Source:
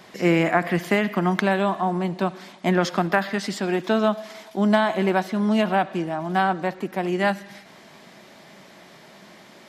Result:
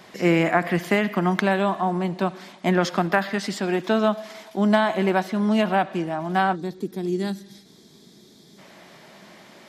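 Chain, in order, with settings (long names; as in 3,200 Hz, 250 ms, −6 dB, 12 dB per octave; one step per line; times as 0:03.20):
gain on a spectral selection 0:06.55–0:08.58, 480–3,200 Hz −15 dB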